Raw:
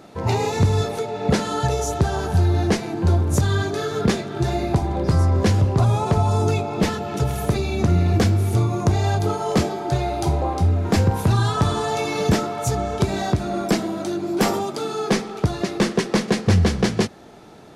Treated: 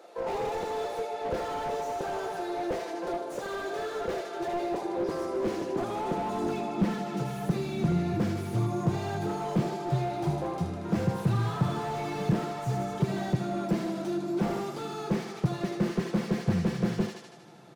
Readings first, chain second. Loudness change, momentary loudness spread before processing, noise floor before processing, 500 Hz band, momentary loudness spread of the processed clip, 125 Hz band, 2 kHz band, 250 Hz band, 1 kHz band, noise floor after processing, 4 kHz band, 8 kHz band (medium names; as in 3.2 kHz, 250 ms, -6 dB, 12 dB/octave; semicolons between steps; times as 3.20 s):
-9.5 dB, 6 LU, -34 dBFS, -8.0 dB, 6 LU, -12.5 dB, -10.5 dB, -7.0 dB, -8.0 dB, -41 dBFS, -13.5 dB, -15.5 dB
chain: comb 5.8 ms, depth 40%; high-pass sweep 500 Hz -> 130 Hz, 4.39–8.15 s; bass shelf 160 Hz -7.5 dB; on a send: thinning echo 78 ms, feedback 61%, high-pass 350 Hz, level -10 dB; on the sum: slew-rate limiter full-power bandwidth 66 Hz; trim -8.5 dB